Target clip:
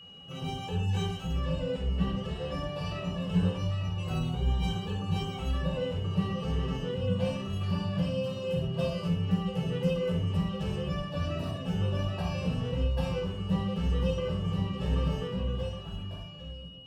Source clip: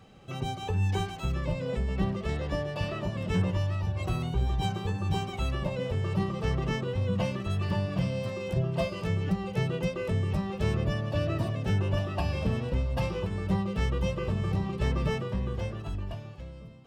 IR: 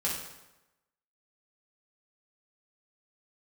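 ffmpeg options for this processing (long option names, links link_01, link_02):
-filter_complex "[0:a]bandreject=frequency=2100:width=11[link_01];[1:a]atrim=start_sample=2205,atrim=end_sample=6615[link_02];[link_01][link_02]afir=irnorm=-1:irlink=0,aeval=exprs='val(0)+0.01*sin(2*PI*2900*n/s)':channel_layout=same,volume=-8dB"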